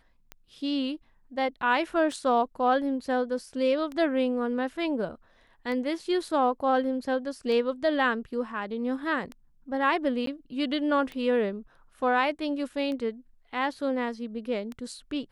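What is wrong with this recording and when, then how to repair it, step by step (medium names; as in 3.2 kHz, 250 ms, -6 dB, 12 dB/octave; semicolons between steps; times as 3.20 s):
tick 33 1/3 rpm -24 dBFS
10.26–10.27 s: dropout 13 ms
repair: de-click; interpolate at 10.26 s, 13 ms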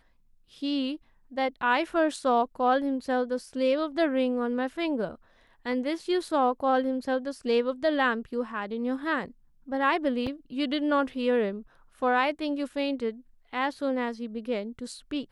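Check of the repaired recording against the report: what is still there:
nothing left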